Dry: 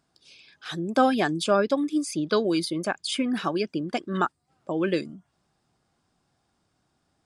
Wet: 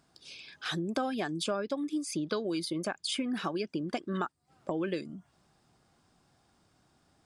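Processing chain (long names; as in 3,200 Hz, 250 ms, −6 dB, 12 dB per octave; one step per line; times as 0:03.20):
downward compressor 4 to 1, threshold −36 dBFS, peak gain reduction 17.5 dB
level +4 dB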